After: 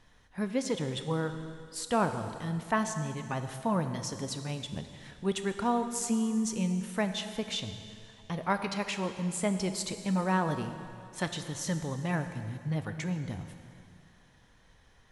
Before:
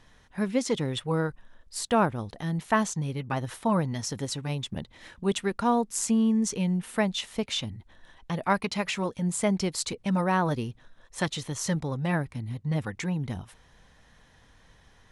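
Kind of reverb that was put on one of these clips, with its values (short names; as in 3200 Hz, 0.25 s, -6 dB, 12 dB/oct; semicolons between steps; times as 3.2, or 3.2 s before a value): plate-style reverb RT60 2.4 s, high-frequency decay 0.95×, DRR 7.5 dB; gain -4.5 dB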